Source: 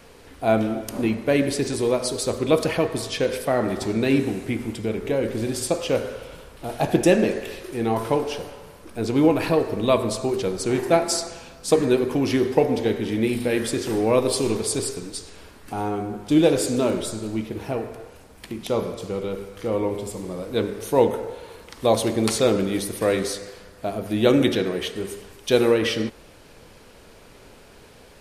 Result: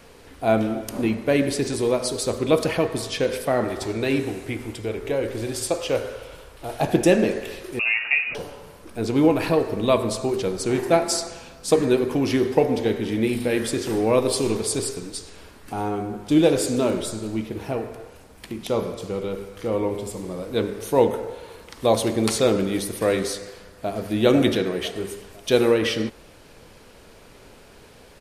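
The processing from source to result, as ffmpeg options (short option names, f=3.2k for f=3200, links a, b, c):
-filter_complex "[0:a]asettb=1/sr,asplit=3[a][b][c];[a]atrim=end=3.644[d];[b]atrim=start=3.64:end=6.81,asetpts=PTS-STARTPTS,afade=t=in:d=0.004:c=qsin,afade=t=out:st=3.166:d=0.004:c=qsin,equalizer=f=200:t=o:w=0.77:g=-9.5[e];[c]atrim=start=6.806[f];[d][e]acrossfade=d=0.004:c1=hsin:c2=qsin[g];[g][f]acrossfade=d=0.004:c1=qsin:c2=hsin,asettb=1/sr,asplit=3[h][i][j];[h]atrim=end=7.794[k];[i]atrim=start=7.79:end=8.35,asetpts=PTS-STARTPTS,afade=t=in:d=0.004:c=qsin,afade=t=out:st=0.556:d=0.004:c=qsin,lowpass=f=2.5k:t=q:w=0.5098,lowpass=f=2.5k:t=q:w=0.6013,lowpass=f=2.5k:t=q:w=0.9,lowpass=f=2.5k:t=q:w=2.563,afreqshift=-2900[l];[j]atrim=start=8.346[m];[k][l]acrossfade=d=0.004:c1=hsin:c2=qsin[n];[n][m]acrossfade=d=0.004:c1=qsin:c2=hsin,asplit=2[o][p];[p]afade=t=in:st=23.45:d=0.01,afade=t=out:st=24.08:d=0.01,aecho=0:1:500|1000|1500|2000:0.630957|0.220835|0.0772923|0.0270523[q];[o][q]amix=inputs=2:normalize=0"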